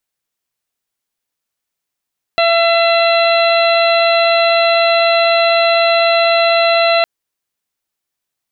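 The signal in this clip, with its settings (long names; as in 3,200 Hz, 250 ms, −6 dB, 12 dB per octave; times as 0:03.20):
steady harmonic partials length 4.66 s, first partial 673 Hz, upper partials −7.5/−10/−7/−15.5/−8 dB, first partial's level −11 dB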